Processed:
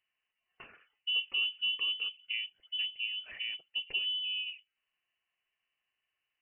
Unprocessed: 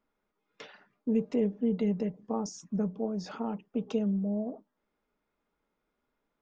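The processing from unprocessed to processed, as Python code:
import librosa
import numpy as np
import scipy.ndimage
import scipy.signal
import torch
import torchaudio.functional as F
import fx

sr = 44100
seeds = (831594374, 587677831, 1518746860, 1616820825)

y = scipy.signal.sosfilt(scipy.signal.butter(2, 170.0, 'highpass', fs=sr, output='sos'), x)
y = fx.freq_invert(y, sr, carrier_hz=3200)
y = F.gain(torch.from_numpy(y), -3.5).numpy()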